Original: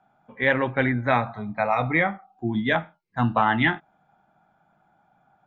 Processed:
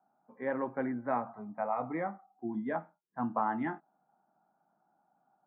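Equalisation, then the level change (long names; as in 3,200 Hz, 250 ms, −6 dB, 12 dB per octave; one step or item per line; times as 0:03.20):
Chebyshev band-pass filter 230–1,100 Hz, order 2
high-frequency loss of the air 180 metres
−8.5 dB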